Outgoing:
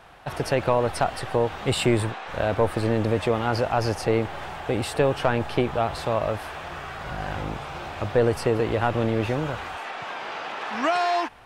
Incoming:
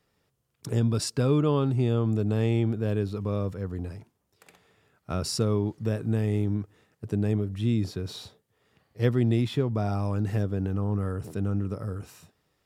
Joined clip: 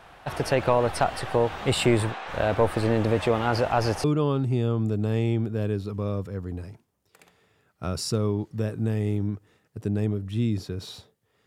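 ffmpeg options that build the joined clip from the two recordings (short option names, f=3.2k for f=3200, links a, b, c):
-filter_complex "[0:a]apad=whole_dur=11.46,atrim=end=11.46,atrim=end=4.042[a];[1:a]atrim=start=1.308:end=8.73[b];[a][b]acrossfade=d=0.004:c1=hsin:c2=hsin"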